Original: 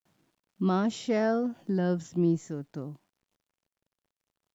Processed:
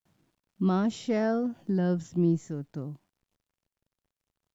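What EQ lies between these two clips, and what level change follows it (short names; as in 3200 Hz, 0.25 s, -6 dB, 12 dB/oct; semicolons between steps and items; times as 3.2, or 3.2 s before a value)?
low shelf 140 Hz +10 dB; -2.0 dB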